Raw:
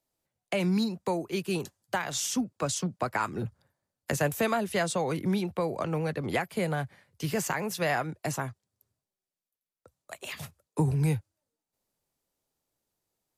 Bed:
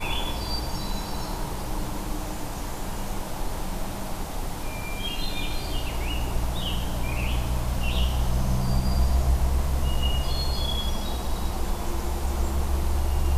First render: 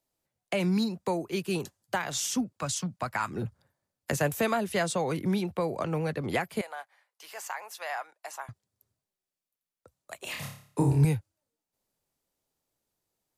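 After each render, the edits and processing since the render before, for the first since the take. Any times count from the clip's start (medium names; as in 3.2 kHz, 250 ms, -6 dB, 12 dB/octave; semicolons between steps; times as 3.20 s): 2.58–3.31 s: peaking EQ 400 Hz -11 dB 1 oct; 6.61–8.49 s: ladder high-pass 650 Hz, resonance 35%; 10.24–11.05 s: flutter echo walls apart 4.9 m, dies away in 0.51 s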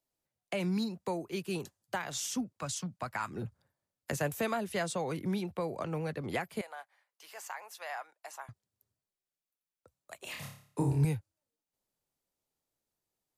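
trim -5.5 dB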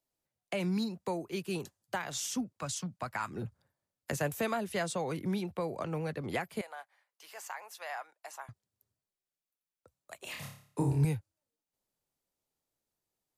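no audible change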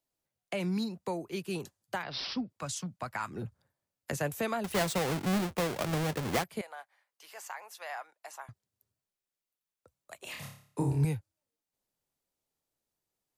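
2.03–2.50 s: careless resampling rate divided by 4×, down none, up filtered; 4.64–6.44 s: square wave that keeps the level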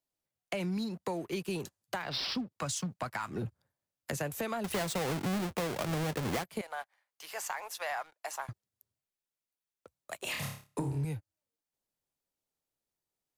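compression, threshold -39 dBFS, peak gain reduction 15 dB; waveshaping leveller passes 2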